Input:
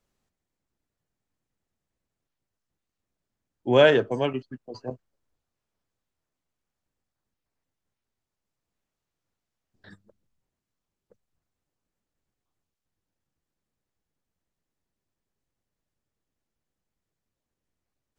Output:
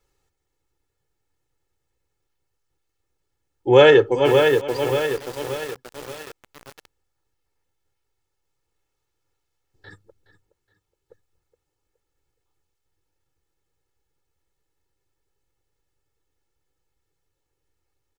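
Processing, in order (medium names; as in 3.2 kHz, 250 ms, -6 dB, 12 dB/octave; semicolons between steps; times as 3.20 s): comb 2.3 ms, depth 91%; feedback delay 419 ms, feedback 35%, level -15 dB; bit-crushed delay 580 ms, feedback 55%, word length 6-bit, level -5 dB; trim +3.5 dB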